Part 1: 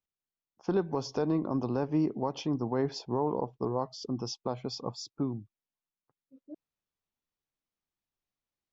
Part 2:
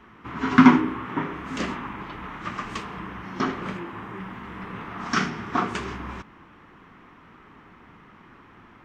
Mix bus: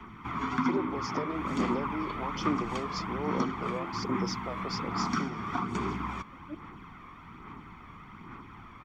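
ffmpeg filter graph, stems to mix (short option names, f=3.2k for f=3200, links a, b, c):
-filter_complex "[0:a]highpass=f=250:w=0.5412,highpass=f=250:w=1.3066,alimiter=level_in=6.5dB:limit=-24dB:level=0:latency=1:release=209,volume=-6.5dB,volume=2.5dB[a];[1:a]acrossover=split=150|420|1200[b][c][d][e];[b]acompressor=threshold=-50dB:ratio=4[f];[c]acompressor=threshold=-36dB:ratio=4[g];[d]acompressor=threshold=-38dB:ratio=4[h];[e]acompressor=threshold=-42dB:ratio=4[i];[f][g][h][i]amix=inputs=4:normalize=0,aecho=1:1:0.9:0.55,volume=-0.5dB[j];[a][j]amix=inputs=2:normalize=0,aphaser=in_gain=1:out_gain=1:delay=1.8:decay=0.38:speed=1.2:type=sinusoidal"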